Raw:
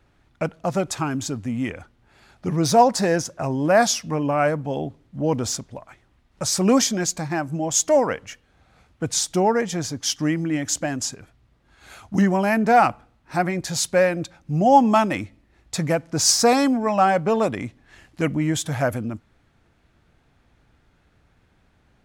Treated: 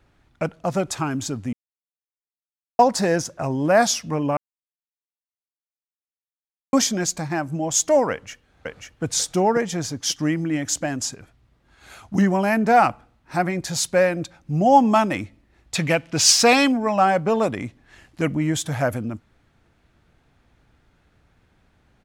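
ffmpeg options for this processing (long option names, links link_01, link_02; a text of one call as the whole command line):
ffmpeg -i in.wav -filter_complex "[0:a]asplit=2[link_01][link_02];[link_02]afade=type=in:start_time=8.11:duration=0.01,afade=type=out:start_time=9.03:duration=0.01,aecho=0:1:540|1080|1620:0.749894|0.149979|0.0299958[link_03];[link_01][link_03]amix=inputs=2:normalize=0,asettb=1/sr,asplit=3[link_04][link_05][link_06];[link_04]atrim=end=15.754[link_07];[link_05]atrim=start=15.75:end=16.72,asetpts=PTS-STARTPTS,afade=type=in:duration=0.004:curve=qsin,afade=type=out:start_time=0.966:duration=0.004:curve=qsin,equalizer=frequency=2800:width_type=o:width=1:gain=13.5[link_08];[link_06]atrim=start=16.716[link_09];[link_07][link_08]acrossfade=duration=0.004:curve1=hsin:curve2=qsin[link_10];[link_10][link_09]acrossfade=duration=0.004:curve1=qsin:curve2=hsin,asplit=5[link_11][link_12][link_13][link_14][link_15];[link_11]atrim=end=1.53,asetpts=PTS-STARTPTS,afade=type=out:start_time=1.526:duration=0.004:curve=hsin[link_16];[link_12]atrim=start=1.53:end=2.79,asetpts=PTS-STARTPTS,volume=0[link_17];[link_13]atrim=start=2.79:end=4.37,asetpts=PTS-STARTPTS,afade=type=in:duration=0.004:curve=hsin,afade=type=out:start_time=1.576:duration=0.004:curve=hsin[link_18];[link_14]atrim=start=4.37:end=6.73,asetpts=PTS-STARTPTS,volume=0[link_19];[link_15]atrim=start=6.73,asetpts=PTS-STARTPTS,afade=type=in:duration=0.004:curve=hsin[link_20];[link_16][link_17][link_18][link_19][link_20]concat=n=5:v=0:a=1" out.wav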